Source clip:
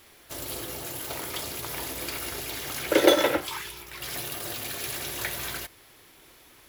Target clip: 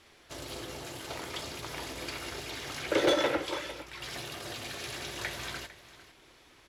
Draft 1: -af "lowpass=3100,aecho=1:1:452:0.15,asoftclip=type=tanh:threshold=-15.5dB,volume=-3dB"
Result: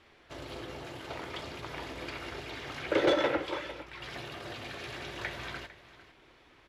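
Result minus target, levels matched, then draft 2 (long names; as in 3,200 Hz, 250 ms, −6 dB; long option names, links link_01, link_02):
8,000 Hz band −10.5 dB
-af "lowpass=6700,aecho=1:1:452:0.15,asoftclip=type=tanh:threshold=-15.5dB,volume=-3dB"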